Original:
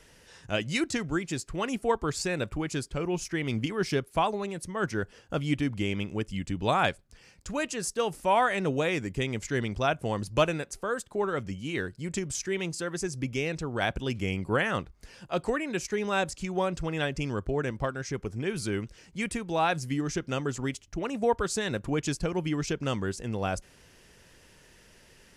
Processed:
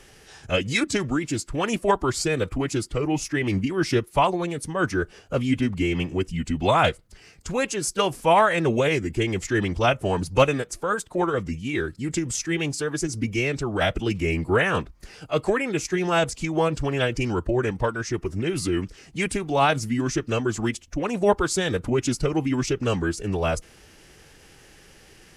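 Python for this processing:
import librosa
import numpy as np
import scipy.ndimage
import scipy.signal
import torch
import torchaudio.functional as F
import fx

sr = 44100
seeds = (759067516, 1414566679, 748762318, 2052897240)

y = fx.pitch_keep_formants(x, sr, semitones=-2.5)
y = y * librosa.db_to_amplitude(6.5)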